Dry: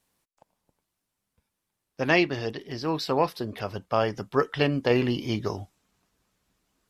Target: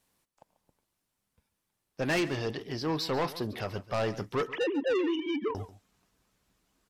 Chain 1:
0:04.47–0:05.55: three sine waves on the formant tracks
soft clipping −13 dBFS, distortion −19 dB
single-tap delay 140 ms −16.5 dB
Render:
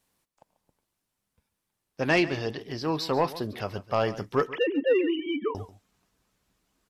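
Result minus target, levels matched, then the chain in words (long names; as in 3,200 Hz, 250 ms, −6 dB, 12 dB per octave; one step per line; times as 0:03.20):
soft clipping: distortion −11 dB
0:04.47–0:05.55: three sine waves on the formant tracks
soft clipping −24.5 dBFS, distortion −8 dB
single-tap delay 140 ms −16.5 dB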